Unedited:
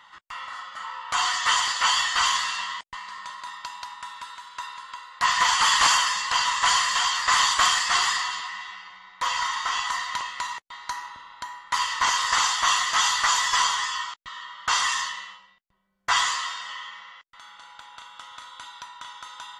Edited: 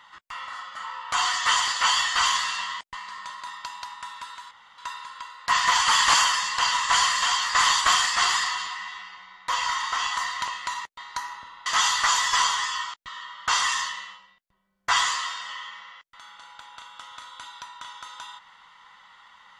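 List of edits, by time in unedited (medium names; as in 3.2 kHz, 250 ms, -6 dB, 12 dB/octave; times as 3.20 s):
4.51 s: insert room tone 0.27 s
11.39–12.86 s: delete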